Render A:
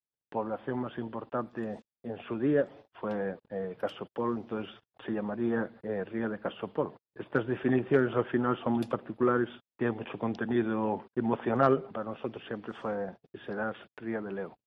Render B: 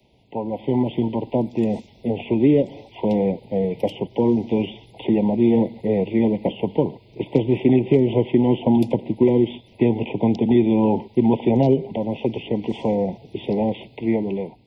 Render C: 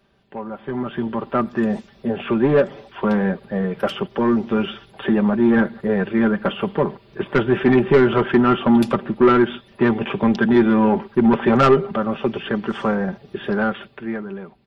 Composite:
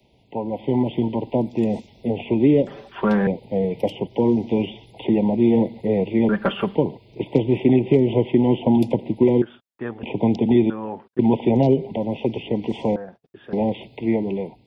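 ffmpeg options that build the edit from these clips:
-filter_complex "[2:a]asplit=2[s0][s1];[0:a]asplit=3[s2][s3][s4];[1:a]asplit=6[s5][s6][s7][s8][s9][s10];[s5]atrim=end=2.672[s11];[s0]atrim=start=2.668:end=3.272[s12];[s6]atrim=start=3.268:end=6.292[s13];[s1]atrim=start=6.288:end=6.752[s14];[s7]atrim=start=6.748:end=9.422[s15];[s2]atrim=start=9.418:end=10.032[s16];[s8]atrim=start=10.028:end=10.702[s17];[s3]atrim=start=10.698:end=11.192[s18];[s9]atrim=start=11.188:end=12.962[s19];[s4]atrim=start=12.958:end=13.532[s20];[s10]atrim=start=13.528[s21];[s11][s12]acrossfade=d=0.004:c1=hsin:c2=hsin[s22];[s22][s13]acrossfade=d=0.004:c1=hsin:c2=hsin[s23];[s23][s14]acrossfade=d=0.004:c1=hsin:c2=hsin[s24];[s24][s15]acrossfade=d=0.004:c1=hsin:c2=hsin[s25];[s25][s16]acrossfade=d=0.004:c1=hsin:c2=hsin[s26];[s26][s17]acrossfade=d=0.004:c1=hsin:c2=hsin[s27];[s27][s18]acrossfade=d=0.004:c1=hsin:c2=hsin[s28];[s28][s19]acrossfade=d=0.004:c1=hsin:c2=hsin[s29];[s29][s20]acrossfade=d=0.004:c1=hsin:c2=hsin[s30];[s30][s21]acrossfade=d=0.004:c1=hsin:c2=hsin"

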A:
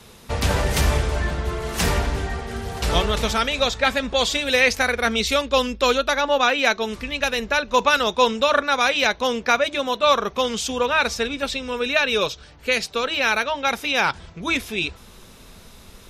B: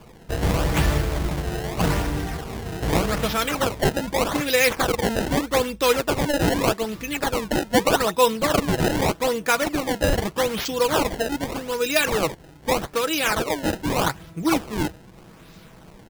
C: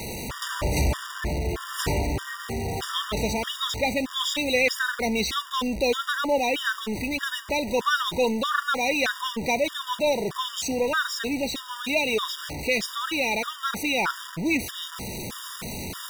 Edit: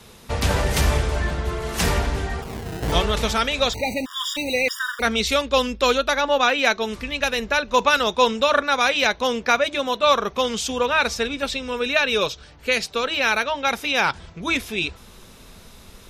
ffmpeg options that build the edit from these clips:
-filter_complex "[0:a]asplit=3[s0][s1][s2];[s0]atrim=end=2.422[s3];[1:a]atrim=start=2.418:end=2.922[s4];[s1]atrim=start=2.918:end=3.732[s5];[2:a]atrim=start=3.728:end=5.022[s6];[s2]atrim=start=5.018[s7];[s3][s4]acrossfade=d=0.004:c1=hsin:c2=hsin[s8];[s8][s5]acrossfade=d=0.004:c1=hsin:c2=hsin[s9];[s9][s6]acrossfade=d=0.004:c1=hsin:c2=hsin[s10];[s10][s7]acrossfade=d=0.004:c1=hsin:c2=hsin"

